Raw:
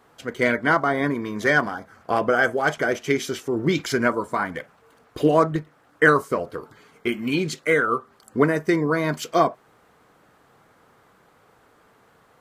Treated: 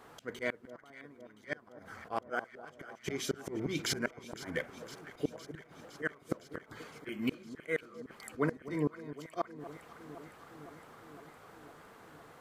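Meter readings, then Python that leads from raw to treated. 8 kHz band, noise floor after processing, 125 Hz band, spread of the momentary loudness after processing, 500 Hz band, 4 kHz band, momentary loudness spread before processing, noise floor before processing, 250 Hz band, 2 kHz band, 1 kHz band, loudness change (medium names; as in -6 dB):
-8.0 dB, -60 dBFS, -14.5 dB, 18 LU, -17.0 dB, -10.0 dB, 11 LU, -58 dBFS, -15.0 dB, -18.5 dB, -20.0 dB, -17.0 dB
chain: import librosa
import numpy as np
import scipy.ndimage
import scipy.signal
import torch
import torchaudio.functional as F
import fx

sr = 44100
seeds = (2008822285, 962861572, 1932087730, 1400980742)

y = fx.auto_swell(x, sr, attack_ms=387.0)
y = fx.hum_notches(y, sr, base_hz=60, count=4)
y = fx.gate_flip(y, sr, shuts_db=-21.0, range_db=-33)
y = fx.echo_alternate(y, sr, ms=255, hz=1100.0, feedback_pct=85, wet_db=-13.5)
y = F.gain(torch.from_numpy(y), 1.5).numpy()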